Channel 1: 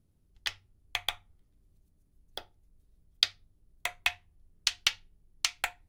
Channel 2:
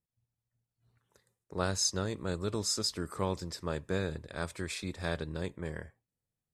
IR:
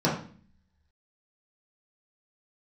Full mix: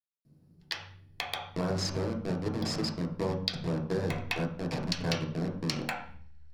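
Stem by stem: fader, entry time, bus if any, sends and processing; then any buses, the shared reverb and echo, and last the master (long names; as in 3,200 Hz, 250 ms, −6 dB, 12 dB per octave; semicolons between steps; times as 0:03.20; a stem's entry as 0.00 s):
−3.5 dB, 0.25 s, send −5.5 dB, no processing
−0.5 dB, 0.00 s, send −8.5 dB, hold until the input has moved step −28 dBFS; low-pass filter 8,100 Hz 12 dB per octave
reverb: on, RT60 0.45 s, pre-delay 3 ms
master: downward compressor 2 to 1, threshold −34 dBFS, peak gain reduction 11 dB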